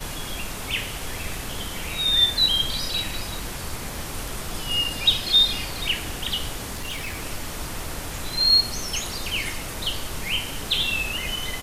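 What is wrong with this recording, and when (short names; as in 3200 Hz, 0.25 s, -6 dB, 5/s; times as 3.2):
6.73–7.24 clipped -26.5 dBFS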